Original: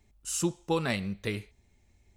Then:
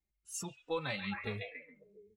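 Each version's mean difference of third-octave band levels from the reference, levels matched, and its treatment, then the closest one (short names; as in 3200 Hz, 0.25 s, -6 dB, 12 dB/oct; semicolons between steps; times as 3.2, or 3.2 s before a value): 8.0 dB: delay with a stepping band-pass 0.138 s, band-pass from 2800 Hz, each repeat -0.7 oct, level 0 dB; dynamic EQ 370 Hz, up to -3 dB, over -36 dBFS, Q 1.1; spectral noise reduction 18 dB; endless flanger 3.4 ms +1.1 Hz; gain -3.5 dB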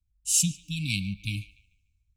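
11.0 dB: FFT band-reject 310–2200 Hz; bell 240 Hz -14 dB 0.42 oct; narrowing echo 0.147 s, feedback 47%, band-pass 2000 Hz, level -14 dB; three-band expander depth 70%; gain +6 dB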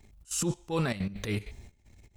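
4.5 dB: low shelf 120 Hz +4.5 dB; compressor 2:1, threshold -32 dBFS, peak gain reduction 6 dB; transient shaper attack -11 dB, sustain +10 dB; step gate "xxx.xxx..xxx.x." 195 bpm -12 dB; gain +4.5 dB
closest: third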